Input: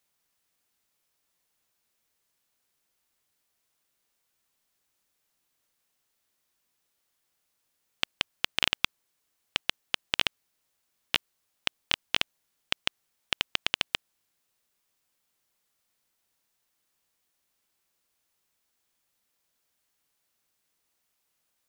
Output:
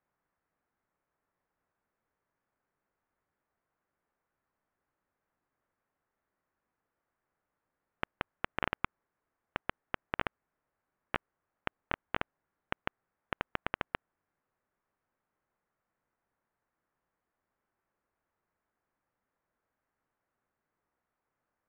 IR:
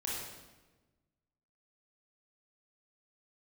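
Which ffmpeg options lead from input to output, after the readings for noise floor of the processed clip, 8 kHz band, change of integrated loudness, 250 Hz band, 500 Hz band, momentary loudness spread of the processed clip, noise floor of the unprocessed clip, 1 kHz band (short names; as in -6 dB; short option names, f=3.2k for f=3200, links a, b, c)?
under -85 dBFS, under -30 dB, -9.5 dB, +1.5 dB, +1.5 dB, 7 LU, -78 dBFS, +1.5 dB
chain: -af "lowpass=f=1.7k:w=0.5412,lowpass=f=1.7k:w=1.3066,volume=1.5dB"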